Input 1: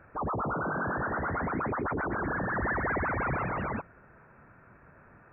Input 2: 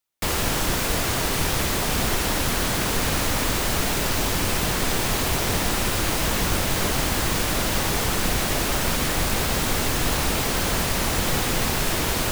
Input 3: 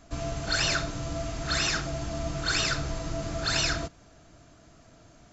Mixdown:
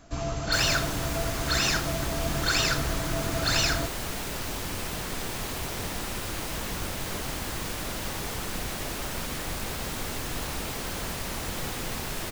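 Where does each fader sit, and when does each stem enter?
-12.0 dB, -10.0 dB, +1.5 dB; 0.00 s, 0.30 s, 0.00 s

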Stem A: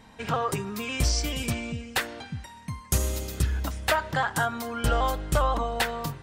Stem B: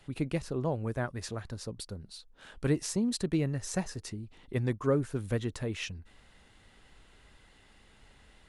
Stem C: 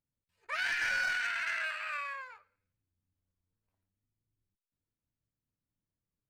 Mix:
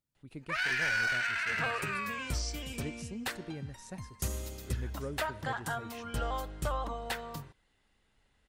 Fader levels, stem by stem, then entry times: -10.0 dB, -13.0 dB, +1.5 dB; 1.30 s, 0.15 s, 0.00 s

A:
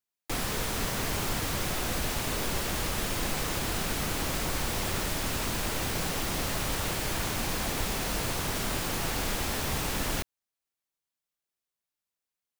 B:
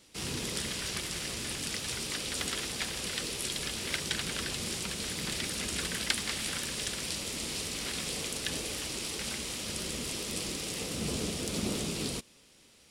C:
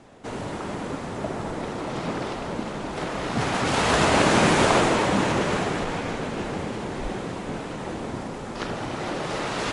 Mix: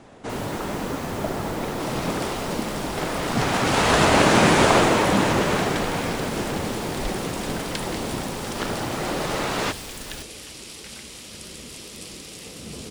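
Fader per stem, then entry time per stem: -8.0 dB, -3.0 dB, +2.5 dB; 0.00 s, 1.65 s, 0.00 s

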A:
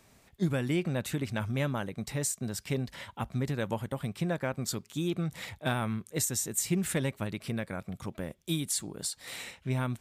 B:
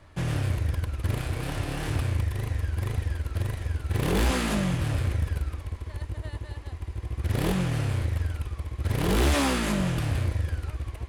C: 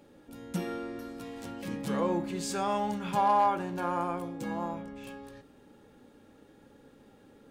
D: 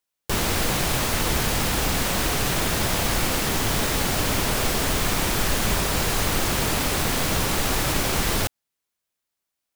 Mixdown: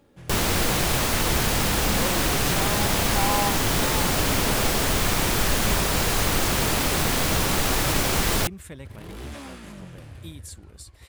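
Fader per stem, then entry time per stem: -10.5 dB, -15.5 dB, -2.5 dB, +0.5 dB; 1.75 s, 0.00 s, 0.00 s, 0.00 s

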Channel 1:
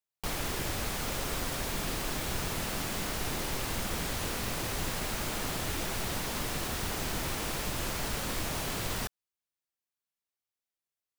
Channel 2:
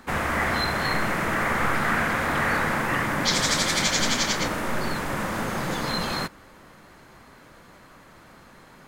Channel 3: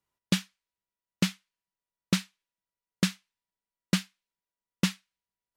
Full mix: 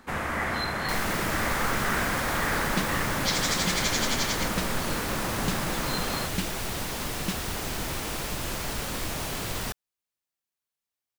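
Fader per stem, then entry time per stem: +2.0 dB, -4.5 dB, -6.0 dB; 0.65 s, 0.00 s, 2.45 s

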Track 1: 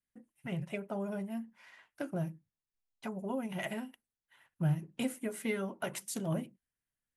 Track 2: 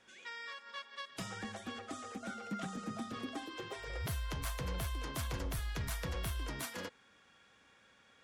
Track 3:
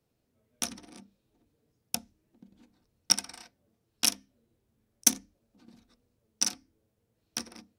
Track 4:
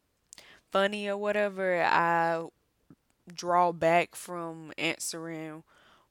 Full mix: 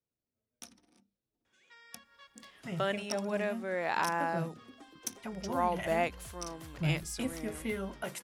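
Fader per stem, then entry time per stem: -1.5 dB, -11.5 dB, -17.0 dB, -6.5 dB; 2.20 s, 1.45 s, 0.00 s, 2.05 s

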